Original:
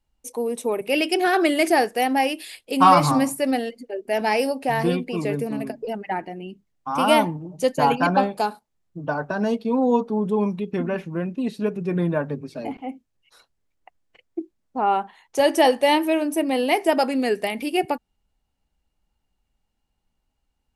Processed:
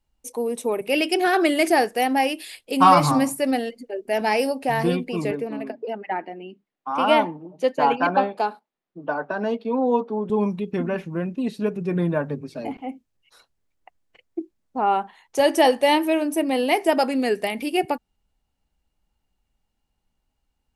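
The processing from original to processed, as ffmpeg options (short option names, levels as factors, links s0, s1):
-filter_complex "[0:a]asettb=1/sr,asplit=3[s0][s1][s2];[s0]atrim=end=5.314[s3];[s1]atrim=start=5.31:end=10.3,asetpts=PTS-STARTPTS,afade=t=in:d=0.004:c=qsin,afade=t=out:st=4.986:d=0.004:c=qsin,acrossover=split=210 4100:gain=0.0631 1 0.158[s4][s5][s6];[s4][s5][s6]amix=inputs=3:normalize=0[s7];[s2]atrim=start=10.296[s8];[s3][s7]acrossfade=d=0.004:c1=hsin:c2=qsin[s9];[s9][s8]acrossfade=d=0.004:c1=qsin:c2=hsin"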